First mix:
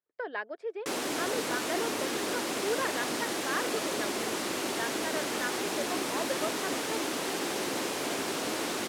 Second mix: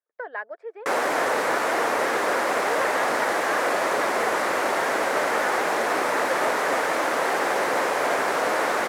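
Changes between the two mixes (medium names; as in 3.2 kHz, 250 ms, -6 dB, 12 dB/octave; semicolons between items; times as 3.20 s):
speech -10.0 dB; master: add high-order bell 1 kHz +13.5 dB 2.5 oct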